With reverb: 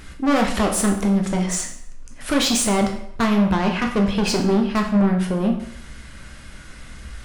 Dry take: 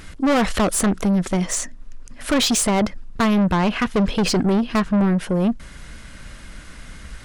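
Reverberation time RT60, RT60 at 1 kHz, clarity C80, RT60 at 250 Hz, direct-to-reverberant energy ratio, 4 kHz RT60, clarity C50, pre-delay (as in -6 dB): 0.70 s, 0.75 s, 10.5 dB, 0.65 s, 2.0 dB, 0.60 s, 7.0 dB, 9 ms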